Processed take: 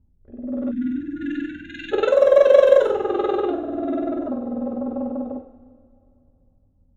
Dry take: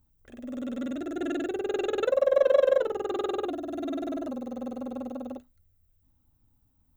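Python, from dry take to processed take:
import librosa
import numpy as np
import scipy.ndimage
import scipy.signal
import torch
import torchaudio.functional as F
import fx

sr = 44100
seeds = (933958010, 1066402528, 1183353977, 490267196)

y = fx.env_lowpass(x, sr, base_hz=420.0, full_db=-19.5)
y = fx.rev_double_slope(y, sr, seeds[0], early_s=0.48, late_s=2.7, knee_db=-18, drr_db=3.0)
y = fx.spec_erase(y, sr, start_s=0.71, length_s=1.21, low_hz=330.0, high_hz=1400.0)
y = y * librosa.db_to_amplitude(6.5)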